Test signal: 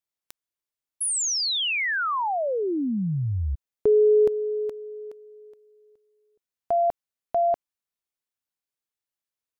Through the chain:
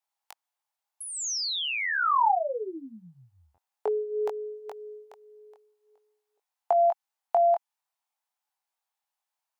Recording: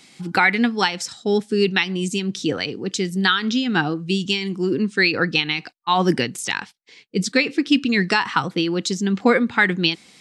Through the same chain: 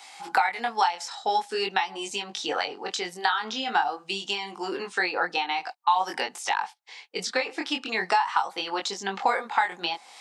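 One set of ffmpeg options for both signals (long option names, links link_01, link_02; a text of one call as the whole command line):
ffmpeg -i in.wav -filter_complex "[0:a]flanger=delay=19.5:depth=3.8:speed=0.46,highpass=frequency=820:width_type=q:width=4.9,acrossover=split=1100|5700[link_01][link_02][link_03];[link_01]acompressor=threshold=-30dB:ratio=4[link_04];[link_02]acompressor=threshold=-35dB:ratio=5[link_05];[link_03]acompressor=threshold=-52dB:ratio=3[link_06];[link_04][link_05][link_06]amix=inputs=3:normalize=0,volume=5dB" out.wav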